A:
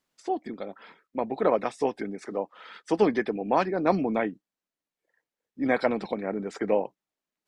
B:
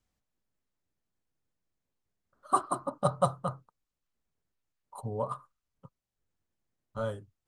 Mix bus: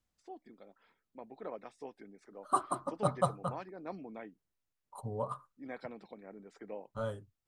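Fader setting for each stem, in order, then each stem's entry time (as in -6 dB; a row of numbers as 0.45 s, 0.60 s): -20.0 dB, -3.5 dB; 0.00 s, 0.00 s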